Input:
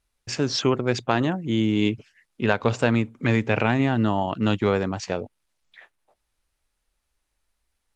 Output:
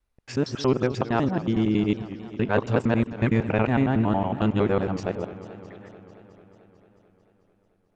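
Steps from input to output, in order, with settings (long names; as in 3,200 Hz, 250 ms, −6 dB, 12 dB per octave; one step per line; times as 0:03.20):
reversed piece by piece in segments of 92 ms
high-shelf EQ 2,300 Hz −11.5 dB
feedback echo with a swinging delay time 221 ms, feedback 73%, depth 139 cents, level −15.5 dB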